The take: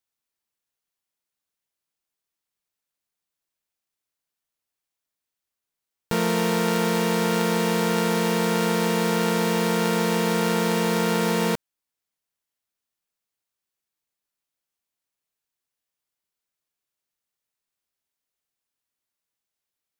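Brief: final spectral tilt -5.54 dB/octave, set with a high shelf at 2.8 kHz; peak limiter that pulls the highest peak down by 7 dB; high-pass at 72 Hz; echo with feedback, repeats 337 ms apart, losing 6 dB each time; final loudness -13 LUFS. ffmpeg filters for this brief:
-af "highpass=72,highshelf=f=2800:g=-4.5,alimiter=limit=0.119:level=0:latency=1,aecho=1:1:337|674|1011|1348|1685|2022:0.501|0.251|0.125|0.0626|0.0313|0.0157,volume=4.47"

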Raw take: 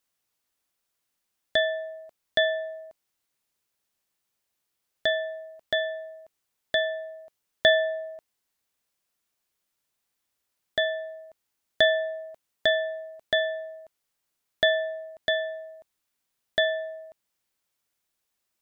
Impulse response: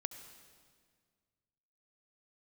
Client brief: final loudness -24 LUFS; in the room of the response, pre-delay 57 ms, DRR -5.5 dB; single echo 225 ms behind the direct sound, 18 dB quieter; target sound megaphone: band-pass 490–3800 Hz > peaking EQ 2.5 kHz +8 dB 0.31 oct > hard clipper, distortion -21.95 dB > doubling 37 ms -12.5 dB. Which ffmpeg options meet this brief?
-filter_complex "[0:a]aecho=1:1:225:0.126,asplit=2[s0][s1];[1:a]atrim=start_sample=2205,adelay=57[s2];[s1][s2]afir=irnorm=-1:irlink=0,volume=2.24[s3];[s0][s3]amix=inputs=2:normalize=0,highpass=490,lowpass=3800,equalizer=f=2500:t=o:w=0.31:g=8,asoftclip=type=hard:threshold=0.266,asplit=2[s4][s5];[s5]adelay=37,volume=0.237[s6];[s4][s6]amix=inputs=2:normalize=0,volume=0.891"

